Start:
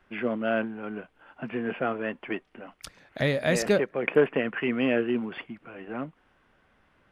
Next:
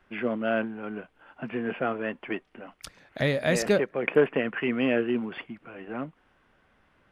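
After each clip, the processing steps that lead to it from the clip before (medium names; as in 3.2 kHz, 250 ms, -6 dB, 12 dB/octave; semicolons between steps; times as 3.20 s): no audible change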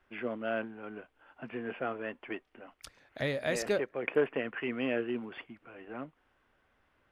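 peaking EQ 180 Hz -8 dB 0.55 oct; trim -6.5 dB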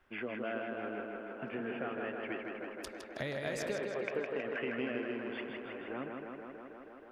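compression 5:1, threshold -37 dBFS, peak gain reduction 13.5 dB; tape echo 159 ms, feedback 86%, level -3 dB, low-pass 4.1 kHz; trim +1 dB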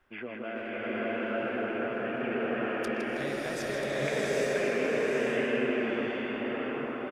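chunks repeated in reverse 668 ms, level -7.5 dB; speakerphone echo 120 ms, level -11 dB; swelling reverb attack 830 ms, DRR -6.5 dB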